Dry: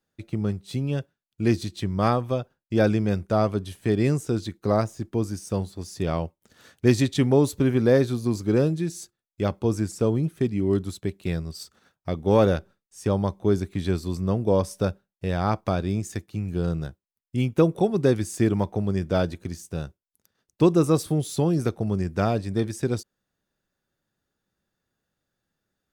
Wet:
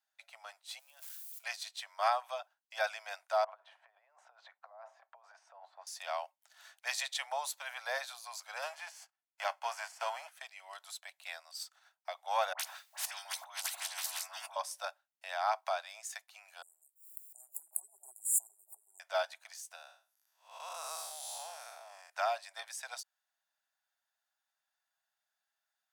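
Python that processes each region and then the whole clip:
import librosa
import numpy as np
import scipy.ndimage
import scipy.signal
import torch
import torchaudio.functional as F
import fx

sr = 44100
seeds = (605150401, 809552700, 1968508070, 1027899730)

y = fx.chain(x, sr, fx.crossing_spikes(level_db=-29.5),
    fx.high_shelf(hz=6800.0, db=8.5),
    fx.level_steps(step_db=22), at=(0.79, 1.44))
y = fx.chain(y, sr, fx.lowpass(hz=1100.0, slope=12),
    fx.over_compress(threshold_db=-30.0, ratio=-0.5), at=(3.44, 5.87))
y = fx.envelope_flatten(y, sr, power=0.6, at=(8.62, 10.31), fade=0.02)
y = fx.riaa(y, sr, side='playback', at=(8.62, 10.31), fade=0.02)
y = fx.notch(y, sr, hz=3800.0, q=5.8, at=(8.62, 10.31), fade=0.02)
y = fx.chain(y, sr, fx.dispersion(late='highs', ms=64.0, hz=1300.0),
    fx.over_compress(threshold_db=-33.0, ratio=-1.0),
    fx.spectral_comp(ratio=10.0), at=(12.53, 14.56))
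y = fx.chain(y, sr, fx.brickwall_bandstop(low_hz=410.0, high_hz=6900.0),
    fx.high_shelf(hz=11000.0, db=9.0),
    fx.pre_swell(db_per_s=89.0), at=(16.62, 19.0))
y = fx.chain(y, sr, fx.spec_blur(span_ms=221.0),
    fx.high_shelf(hz=8000.0, db=5.5), at=(19.75, 22.1))
y = scipy.signal.sosfilt(scipy.signal.butter(12, 650.0, 'highpass', fs=sr, output='sos'), y)
y = fx.notch(y, sr, hz=1200.0, q=13.0)
y = y * librosa.db_to_amplitude(-3.5)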